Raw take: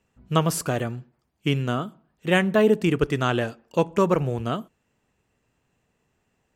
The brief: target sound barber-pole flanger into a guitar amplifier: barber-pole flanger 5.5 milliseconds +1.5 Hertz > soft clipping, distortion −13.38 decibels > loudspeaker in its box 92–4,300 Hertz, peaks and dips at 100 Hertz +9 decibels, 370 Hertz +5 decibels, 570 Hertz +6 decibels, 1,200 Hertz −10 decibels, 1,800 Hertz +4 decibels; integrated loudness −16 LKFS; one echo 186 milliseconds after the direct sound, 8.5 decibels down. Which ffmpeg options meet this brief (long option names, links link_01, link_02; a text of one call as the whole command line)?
ffmpeg -i in.wav -filter_complex "[0:a]aecho=1:1:186:0.376,asplit=2[link_01][link_02];[link_02]adelay=5.5,afreqshift=1.5[link_03];[link_01][link_03]amix=inputs=2:normalize=1,asoftclip=threshold=-17.5dB,highpass=92,equalizer=frequency=100:width_type=q:width=4:gain=9,equalizer=frequency=370:width_type=q:width=4:gain=5,equalizer=frequency=570:width_type=q:width=4:gain=6,equalizer=frequency=1200:width_type=q:width=4:gain=-10,equalizer=frequency=1800:width_type=q:width=4:gain=4,lowpass=frequency=4300:width=0.5412,lowpass=frequency=4300:width=1.3066,volume=10.5dB" out.wav